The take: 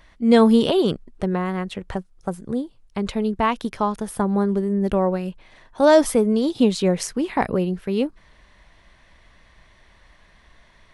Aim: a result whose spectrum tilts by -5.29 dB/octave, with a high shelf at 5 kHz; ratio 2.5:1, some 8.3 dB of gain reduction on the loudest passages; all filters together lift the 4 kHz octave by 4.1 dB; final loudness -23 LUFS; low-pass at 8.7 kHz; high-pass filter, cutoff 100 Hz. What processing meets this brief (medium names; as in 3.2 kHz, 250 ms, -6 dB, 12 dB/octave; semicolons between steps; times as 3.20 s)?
high-pass 100 Hz; low-pass 8.7 kHz; peaking EQ 4 kHz +3.5 dB; treble shelf 5 kHz +4.5 dB; compression 2.5:1, threshold -22 dBFS; trim +3 dB